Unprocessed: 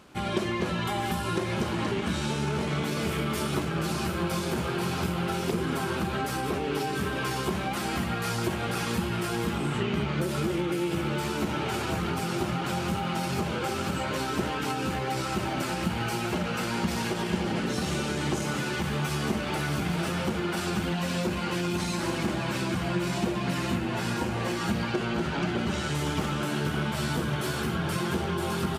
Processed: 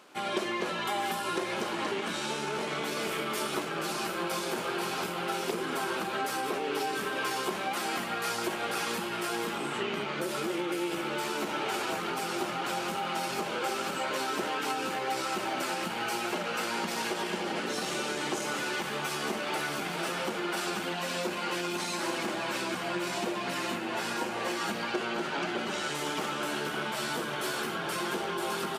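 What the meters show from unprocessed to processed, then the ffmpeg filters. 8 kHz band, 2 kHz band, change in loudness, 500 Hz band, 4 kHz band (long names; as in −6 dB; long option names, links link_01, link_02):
0.0 dB, 0.0 dB, −3.0 dB, −2.0 dB, 0.0 dB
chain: -af "highpass=370"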